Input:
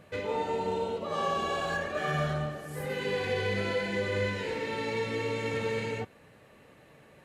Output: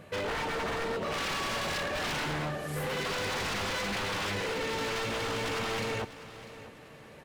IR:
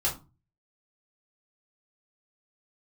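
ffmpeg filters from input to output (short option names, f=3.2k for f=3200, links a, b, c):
-af "acontrast=34,aeval=exprs='0.0447*(abs(mod(val(0)/0.0447+3,4)-2)-1)':c=same,aecho=1:1:647|1294|1941:0.158|0.0555|0.0194,volume=-1dB"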